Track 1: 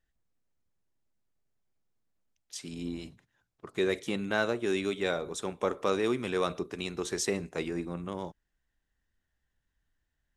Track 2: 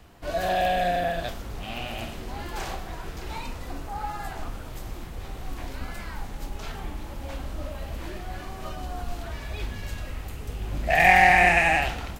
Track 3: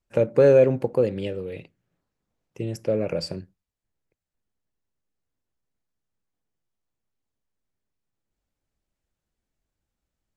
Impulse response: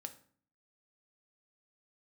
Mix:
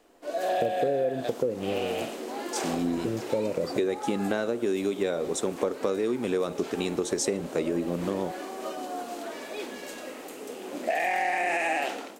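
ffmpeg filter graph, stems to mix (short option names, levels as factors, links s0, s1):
-filter_complex "[0:a]volume=1.33[s0];[1:a]highpass=f=280:w=0.5412,highpass=f=280:w=1.3066,alimiter=limit=0.211:level=0:latency=1,dynaudnorm=f=360:g=3:m=2.51,volume=0.335[s1];[2:a]lowpass=4500,adelay=450,volume=0.447[s2];[s0][s1][s2]amix=inputs=3:normalize=0,equalizer=f=250:t=o:w=1:g=8,equalizer=f=500:t=o:w=1:g=8,equalizer=f=8000:t=o:w=1:g=6,acompressor=threshold=0.0708:ratio=12"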